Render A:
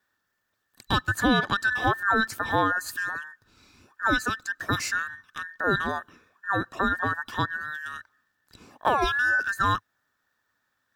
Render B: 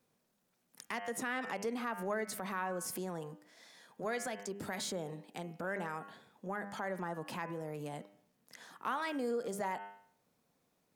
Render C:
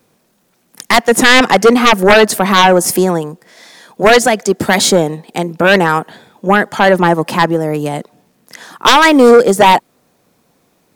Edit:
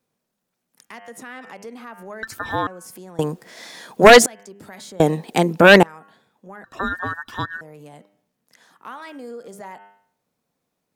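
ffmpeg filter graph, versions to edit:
-filter_complex "[0:a]asplit=2[a][b];[2:a]asplit=2[c][d];[1:a]asplit=5[e][f][g][h][i];[e]atrim=end=2.232[j];[a]atrim=start=2.228:end=2.672[k];[f]atrim=start=2.668:end=3.192[l];[c]atrim=start=3.188:end=4.262[m];[g]atrim=start=4.258:end=5.002[n];[d]atrim=start=4.998:end=5.832[o];[h]atrim=start=5.828:end=6.642[p];[b]atrim=start=6.638:end=7.612[q];[i]atrim=start=7.608[r];[j][k]acrossfade=d=0.004:c1=hsin:c2=hsin[s];[s][l]acrossfade=d=0.004:c1=hsin:c2=hsin[t];[t][m]acrossfade=d=0.004:c1=hsin:c2=hsin[u];[u][n]acrossfade=d=0.004:c1=hsin:c2=hsin[v];[v][o]acrossfade=d=0.004:c1=hsin:c2=hsin[w];[w][p]acrossfade=d=0.004:c1=hsin:c2=hsin[x];[x][q]acrossfade=d=0.004:c1=hsin:c2=hsin[y];[y][r]acrossfade=d=0.004:c1=hsin:c2=hsin"

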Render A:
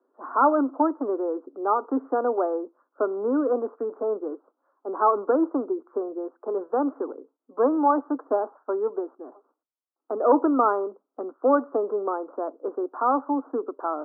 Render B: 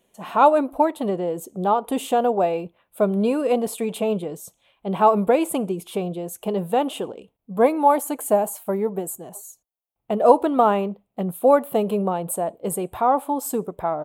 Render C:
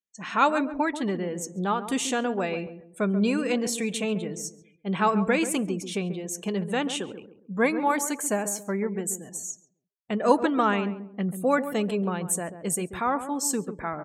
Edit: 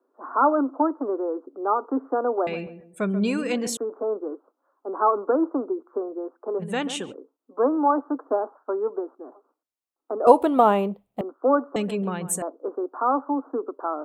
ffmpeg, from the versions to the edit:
-filter_complex "[2:a]asplit=3[a][b][c];[0:a]asplit=5[d][e][f][g][h];[d]atrim=end=2.472[i];[a]atrim=start=2.468:end=3.772[j];[e]atrim=start=3.768:end=6.63[k];[b]atrim=start=6.59:end=7.15[l];[f]atrim=start=7.11:end=10.272[m];[1:a]atrim=start=10.268:end=11.212[n];[g]atrim=start=11.208:end=11.762[o];[c]atrim=start=11.758:end=12.422[p];[h]atrim=start=12.418[q];[i][j]acrossfade=d=0.004:c1=hsin:c2=hsin[r];[r][k]acrossfade=d=0.004:c1=hsin:c2=hsin[s];[s][l]acrossfade=d=0.04:c1=tri:c2=tri[t];[t][m]acrossfade=d=0.04:c1=tri:c2=tri[u];[u][n]acrossfade=d=0.004:c1=hsin:c2=hsin[v];[v][o]acrossfade=d=0.004:c1=hsin:c2=hsin[w];[w][p]acrossfade=d=0.004:c1=hsin:c2=hsin[x];[x][q]acrossfade=d=0.004:c1=hsin:c2=hsin"

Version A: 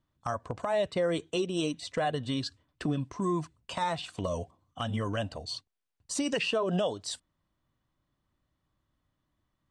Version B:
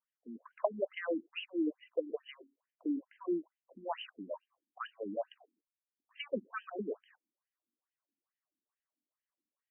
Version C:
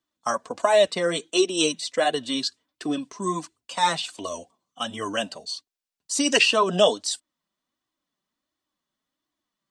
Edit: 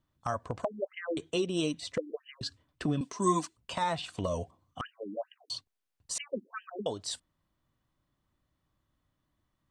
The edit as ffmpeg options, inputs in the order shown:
-filter_complex "[1:a]asplit=4[a][b][c][d];[0:a]asplit=6[e][f][g][h][i][j];[e]atrim=end=0.652[k];[a]atrim=start=0.648:end=1.172[l];[f]atrim=start=1.168:end=1.982[m];[b]atrim=start=1.978:end=2.412[n];[g]atrim=start=2.408:end=3.012[o];[2:a]atrim=start=3.008:end=3.572[p];[h]atrim=start=3.568:end=4.812[q];[c]atrim=start=4.808:end=5.502[r];[i]atrim=start=5.498:end=6.182[s];[d]atrim=start=6.178:end=6.862[t];[j]atrim=start=6.858[u];[k][l]acrossfade=d=0.004:c1=hsin:c2=hsin[v];[v][m]acrossfade=d=0.004:c1=hsin:c2=hsin[w];[w][n]acrossfade=d=0.004:c1=hsin:c2=hsin[x];[x][o]acrossfade=d=0.004:c1=hsin:c2=hsin[y];[y][p]acrossfade=d=0.004:c1=hsin:c2=hsin[z];[z][q]acrossfade=d=0.004:c1=hsin:c2=hsin[aa];[aa][r]acrossfade=d=0.004:c1=hsin:c2=hsin[ab];[ab][s]acrossfade=d=0.004:c1=hsin:c2=hsin[ac];[ac][t]acrossfade=d=0.004:c1=hsin:c2=hsin[ad];[ad][u]acrossfade=d=0.004:c1=hsin:c2=hsin"

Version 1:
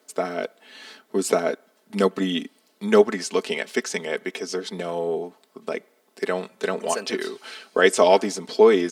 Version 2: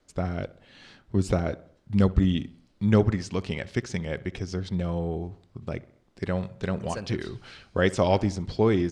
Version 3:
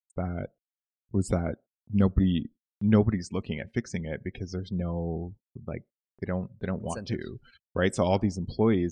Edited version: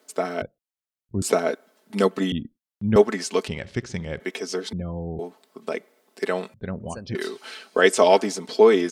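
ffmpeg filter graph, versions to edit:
-filter_complex "[2:a]asplit=4[a][b][c][d];[0:a]asplit=6[e][f][g][h][i][j];[e]atrim=end=0.422[k];[a]atrim=start=0.418:end=1.222[l];[f]atrim=start=1.218:end=2.322[m];[b]atrim=start=2.318:end=2.962[n];[g]atrim=start=2.958:end=3.482[o];[1:a]atrim=start=3.478:end=4.202[p];[h]atrim=start=4.198:end=4.732[q];[c]atrim=start=4.728:end=5.192[r];[i]atrim=start=5.188:end=6.542[s];[d]atrim=start=6.538:end=7.152[t];[j]atrim=start=7.148[u];[k][l]acrossfade=d=0.004:c1=hsin:c2=hsin[v];[v][m]acrossfade=d=0.004:c1=hsin:c2=hsin[w];[w][n]acrossfade=d=0.004:c1=hsin:c2=hsin[x];[x][o]acrossfade=d=0.004:c1=hsin:c2=hsin[y];[y][p]acrossfade=d=0.004:c1=hsin:c2=hsin[z];[z][q]acrossfade=d=0.004:c1=hsin:c2=hsin[aa];[aa][r]acrossfade=d=0.004:c1=hsin:c2=hsin[ab];[ab][s]acrossfade=d=0.004:c1=hsin:c2=hsin[ac];[ac][t]acrossfade=d=0.004:c1=hsin:c2=hsin[ad];[ad][u]acrossfade=d=0.004:c1=hsin:c2=hsin"

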